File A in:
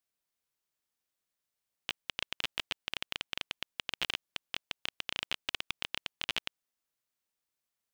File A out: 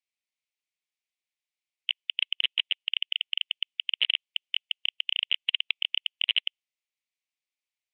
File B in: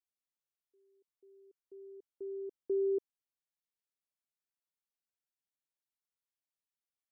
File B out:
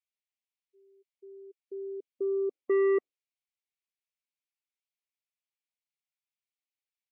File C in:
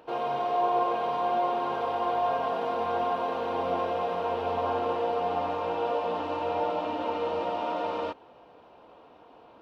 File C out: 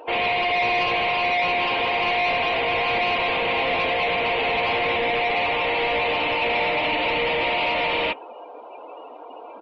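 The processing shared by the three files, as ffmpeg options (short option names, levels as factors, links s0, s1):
-filter_complex "[0:a]asplit=2[s0][s1];[s1]highpass=f=720:p=1,volume=25.1,asoftclip=type=tanh:threshold=0.2[s2];[s0][s2]amix=inputs=2:normalize=0,lowpass=f=3100:p=1,volume=0.501,afftdn=nr=26:nf=-37,highshelf=f=1800:t=q:w=3:g=7,aresample=22050,aresample=44100,volume=0.75"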